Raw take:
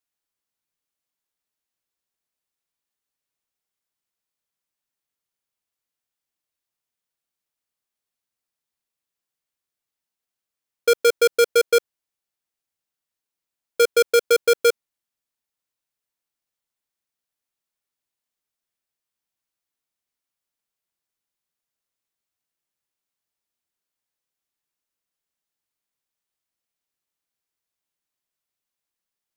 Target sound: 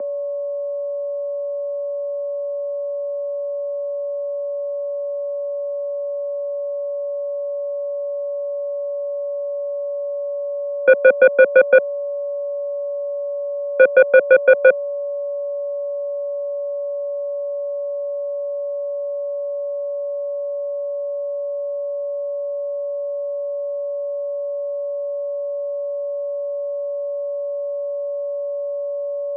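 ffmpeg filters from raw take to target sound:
-af "aeval=exprs='val(0)+0.0224*sin(2*PI*520*n/s)':c=same,aeval=exprs='0.251*(cos(1*acos(clip(val(0)/0.251,-1,1)))-cos(1*PI/2))+0.0447*(cos(5*acos(clip(val(0)/0.251,-1,1)))-cos(5*PI/2))+0.0126*(cos(6*acos(clip(val(0)/0.251,-1,1)))-cos(6*PI/2))+0.0158*(cos(7*acos(clip(val(0)/0.251,-1,1)))-cos(7*PI/2))':c=same,highpass=f=150:t=q:w=0.5412,highpass=f=150:t=q:w=1.307,lowpass=f=2100:t=q:w=0.5176,lowpass=f=2100:t=q:w=0.7071,lowpass=f=2100:t=q:w=1.932,afreqshift=51,volume=2.51"

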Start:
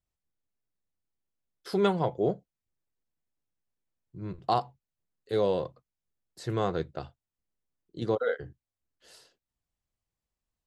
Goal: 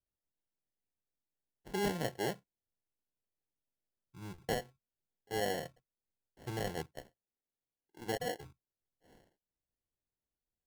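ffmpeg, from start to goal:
-filter_complex "[0:a]asettb=1/sr,asplit=3[s0][s1][s2];[s0]atrim=end=6.864[s3];[s1]atrim=start=6.86:end=8.06,asetpts=PTS-STARTPTS,afade=t=in:d=0.004:c=qsin,afade=t=out:st=1.196:d=0.004:c=qsin,bass=f=250:g=-15,treble=f=4000:g=1[s4];[s2]atrim=start=8.056[s5];[s3][s4]acrossfade=d=0.004:c1=hsin:c2=qsin[s6];[s6][s5]acrossfade=d=0.004:c1=qsin:c2=hsin,acrusher=samples=36:mix=1:aa=0.000001,volume=0.355"

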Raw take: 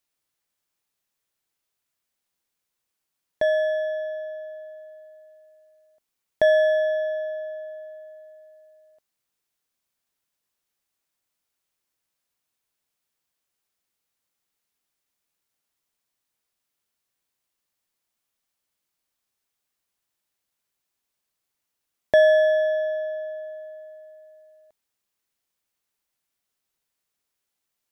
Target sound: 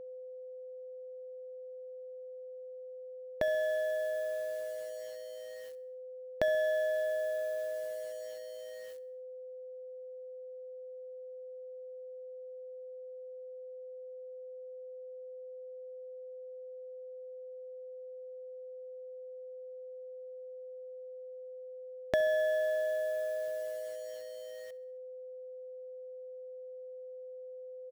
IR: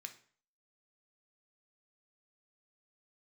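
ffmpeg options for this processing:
-filter_complex "[0:a]acompressor=threshold=0.0178:ratio=2.5,acrusher=bits=8:mix=0:aa=0.000001,aeval=exprs='val(0)+0.00631*sin(2*PI*510*n/s)':c=same,asplit=2[s0][s1];[s1]aecho=0:1:67|134|201|268:0.0794|0.0461|0.0267|0.0155[s2];[s0][s2]amix=inputs=2:normalize=0,volume=1.12"

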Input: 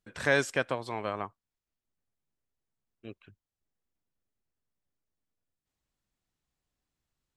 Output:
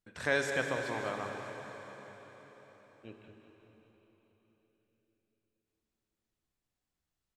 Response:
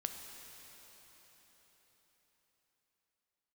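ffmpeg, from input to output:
-filter_complex "[0:a]aecho=1:1:198|396|594|792|990|1188|1386:0.251|0.151|0.0904|0.0543|0.0326|0.0195|0.0117[s0];[1:a]atrim=start_sample=2205[s1];[s0][s1]afir=irnorm=-1:irlink=0,volume=0.708"

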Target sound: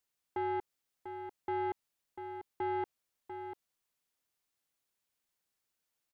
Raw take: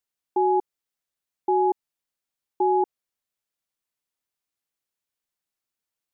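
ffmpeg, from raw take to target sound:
-af "alimiter=level_in=1.12:limit=0.0631:level=0:latency=1:release=23,volume=0.891,asoftclip=type=tanh:threshold=0.0266,aecho=1:1:694:0.355,volume=1.19"

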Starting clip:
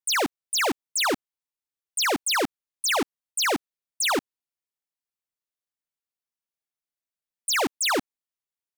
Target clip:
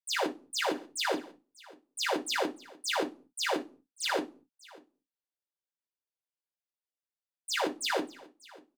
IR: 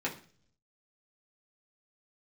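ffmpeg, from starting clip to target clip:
-filter_complex "[0:a]aecho=1:1:591:0.0794[s0];[1:a]atrim=start_sample=2205,asetrate=83790,aresample=44100[s1];[s0][s1]afir=irnorm=-1:irlink=0,volume=0.422"

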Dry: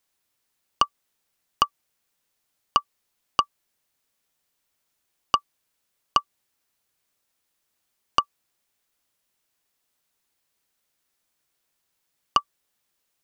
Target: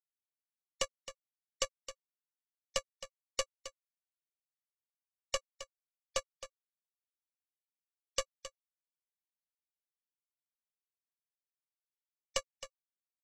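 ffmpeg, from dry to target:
-filter_complex "[0:a]asettb=1/sr,asplit=3[s0][s1][s2];[s0]atrim=end=5.354[s3];[s1]atrim=start=5.35:end=6.18,asetpts=PTS-STARTPTS,afade=t=in:d=0.004:c=qsin,afade=t=out:st=0.826:d=0.004:c=qsin,aemphasis=mode=reproduction:type=bsi[s4];[s2]atrim=start=6.176[s5];[s3][s4]acrossfade=d=0.004:c1=hsin:c2=qsin[s6];[s6][s5]acrossfade=d=0.004:c1=qsin:c2=hsin,afftfilt=real='re*gte(hypot(re,im),0.0126)':imag='im*gte(hypot(re,im),0.0126)':win_size=1024:overlap=0.75,highpass=810,acrossover=split=1600[s7][s8];[s7]acrusher=samples=26:mix=1:aa=0.000001[s9];[s8]acontrast=51[s10];[s9][s10]amix=inputs=2:normalize=0,asoftclip=type=tanh:threshold=0.119,aeval=exprs='0.119*(cos(1*acos(clip(val(0)/0.119,-1,1)))-cos(1*PI/2))+0.0119*(cos(3*acos(clip(val(0)/0.119,-1,1)))-cos(3*PI/2))+0.0237*(cos(6*acos(clip(val(0)/0.119,-1,1)))-cos(6*PI/2))':c=same,tremolo=f=29:d=0.333,asoftclip=type=hard:threshold=0.0473,lowpass=f=7000:t=q:w=3.8,aecho=1:1:266:0.224,volume=0.891"

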